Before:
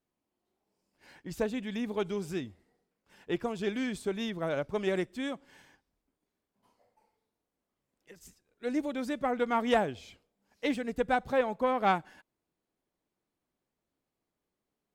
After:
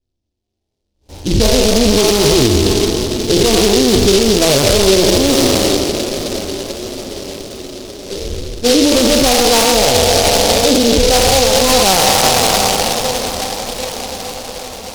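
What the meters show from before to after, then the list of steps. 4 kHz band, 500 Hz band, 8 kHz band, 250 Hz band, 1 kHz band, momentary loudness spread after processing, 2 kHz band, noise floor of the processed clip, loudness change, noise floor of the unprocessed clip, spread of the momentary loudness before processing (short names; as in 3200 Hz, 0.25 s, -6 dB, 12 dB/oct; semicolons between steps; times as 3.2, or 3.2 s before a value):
+32.5 dB, +21.0 dB, +40.0 dB, +20.0 dB, +17.5 dB, 16 LU, +18.5 dB, -74 dBFS, +20.5 dB, under -85 dBFS, 10 LU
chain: spectral trails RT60 2.74 s; low-pass opened by the level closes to 580 Hz, open at -23.5 dBFS; compressor 3:1, threshold -26 dBFS, peak gain reduction 7 dB; inverse Chebyshev low-pass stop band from 4400 Hz, stop band 60 dB; resonant low shelf 110 Hz +14 dB, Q 1.5; diffused feedback echo 0.765 s, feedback 61%, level -14.5 dB; gate with hold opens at -50 dBFS; flange 1.3 Hz, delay 7.7 ms, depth 2.7 ms, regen -34%; maximiser +31 dB; noise-modulated delay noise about 4200 Hz, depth 0.18 ms; gain -2.5 dB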